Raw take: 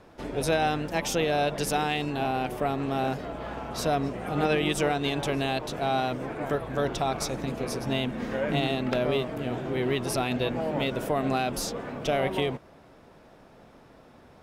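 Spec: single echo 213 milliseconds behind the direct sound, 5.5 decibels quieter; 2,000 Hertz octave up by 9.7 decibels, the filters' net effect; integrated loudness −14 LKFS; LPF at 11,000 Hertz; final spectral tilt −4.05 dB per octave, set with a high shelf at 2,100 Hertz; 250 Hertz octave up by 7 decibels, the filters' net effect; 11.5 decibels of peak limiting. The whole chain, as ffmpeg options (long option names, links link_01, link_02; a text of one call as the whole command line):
ffmpeg -i in.wav -af "lowpass=11000,equalizer=frequency=250:width_type=o:gain=8,equalizer=frequency=2000:width_type=o:gain=8,highshelf=frequency=2100:gain=7.5,alimiter=limit=-16.5dB:level=0:latency=1,aecho=1:1:213:0.531,volume=12.5dB" out.wav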